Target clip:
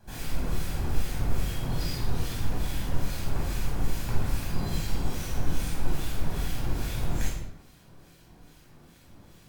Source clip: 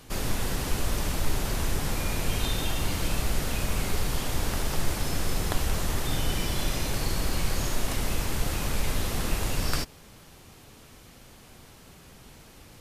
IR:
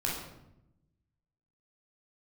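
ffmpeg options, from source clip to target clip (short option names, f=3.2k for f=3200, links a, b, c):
-filter_complex "[0:a]asetrate=59535,aresample=44100,acrossover=split=1500[a][b];[a]aeval=exprs='val(0)*(1-0.7/2+0.7/2*cos(2*PI*2.4*n/s))':c=same[c];[b]aeval=exprs='val(0)*(1-0.7/2-0.7/2*cos(2*PI*2.4*n/s))':c=same[d];[c][d]amix=inputs=2:normalize=0[e];[1:a]atrim=start_sample=2205,afade=t=out:st=0.42:d=0.01,atrim=end_sample=18963[f];[e][f]afir=irnorm=-1:irlink=0,volume=-8.5dB"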